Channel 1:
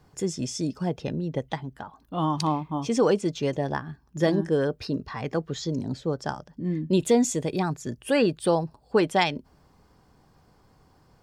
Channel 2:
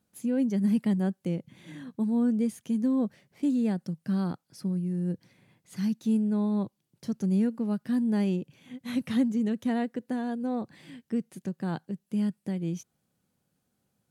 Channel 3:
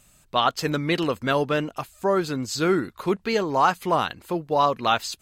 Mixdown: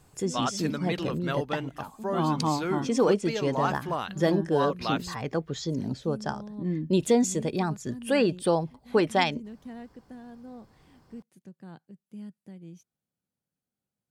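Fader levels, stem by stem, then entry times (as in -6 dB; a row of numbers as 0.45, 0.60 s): -1.5, -14.0, -9.0 dB; 0.00, 0.00, 0.00 s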